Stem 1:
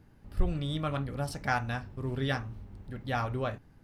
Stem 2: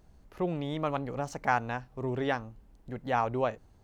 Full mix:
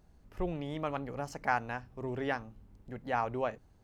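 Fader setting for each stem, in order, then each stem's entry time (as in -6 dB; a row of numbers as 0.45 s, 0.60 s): -14.0 dB, -4.0 dB; 0.00 s, 0.00 s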